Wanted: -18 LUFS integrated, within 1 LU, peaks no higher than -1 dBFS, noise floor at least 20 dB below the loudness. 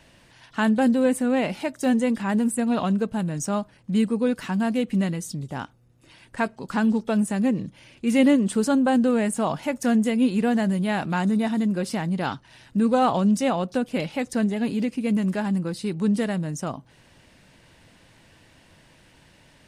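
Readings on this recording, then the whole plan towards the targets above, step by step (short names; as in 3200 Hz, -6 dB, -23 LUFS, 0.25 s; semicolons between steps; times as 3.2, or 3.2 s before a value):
loudness -23.5 LUFS; peak -7.0 dBFS; loudness target -18.0 LUFS
-> gain +5.5 dB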